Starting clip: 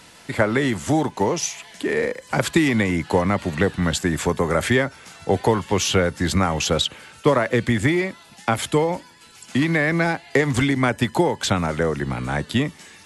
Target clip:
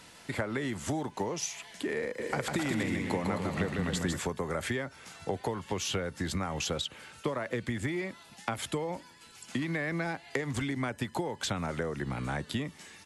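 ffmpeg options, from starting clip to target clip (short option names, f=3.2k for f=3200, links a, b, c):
-filter_complex "[0:a]acompressor=threshold=-24dB:ratio=5,asplit=3[a][b][c];[a]afade=t=out:st=2.18:d=0.02[d];[b]aecho=1:1:150|262.5|346.9|410.2|457.6:0.631|0.398|0.251|0.158|0.1,afade=t=in:st=2.18:d=0.02,afade=t=out:st=4.18:d=0.02[e];[c]afade=t=in:st=4.18:d=0.02[f];[d][e][f]amix=inputs=3:normalize=0,volume=-6dB"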